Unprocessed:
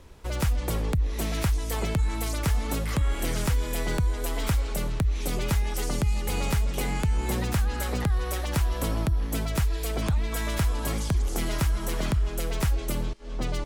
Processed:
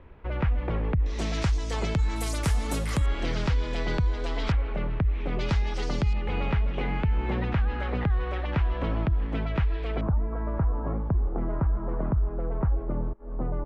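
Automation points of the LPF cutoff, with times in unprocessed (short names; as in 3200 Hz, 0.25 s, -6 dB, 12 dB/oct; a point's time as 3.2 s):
LPF 24 dB/oct
2500 Hz
from 1.06 s 6500 Hz
from 2.16 s 11000 Hz
from 3.06 s 4800 Hz
from 4.52 s 2600 Hz
from 5.39 s 5000 Hz
from 6.13 s 2900 Hz
from 10.01 s 1200 Hz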